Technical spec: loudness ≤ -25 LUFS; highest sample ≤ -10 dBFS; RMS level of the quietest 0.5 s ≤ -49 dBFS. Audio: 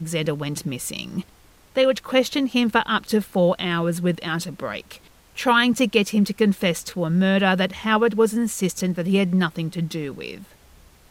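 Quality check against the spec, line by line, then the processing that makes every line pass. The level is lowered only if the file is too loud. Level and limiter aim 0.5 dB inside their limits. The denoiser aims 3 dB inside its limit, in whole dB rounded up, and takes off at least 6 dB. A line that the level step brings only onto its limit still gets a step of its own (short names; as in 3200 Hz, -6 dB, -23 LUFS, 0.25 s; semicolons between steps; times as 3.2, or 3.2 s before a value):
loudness -22.0 LUFS: fail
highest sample -4.5 dBFS: fail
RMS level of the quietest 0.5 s -52 dBFS: OK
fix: gain -3.5 dB; limiter -10.5 dBFS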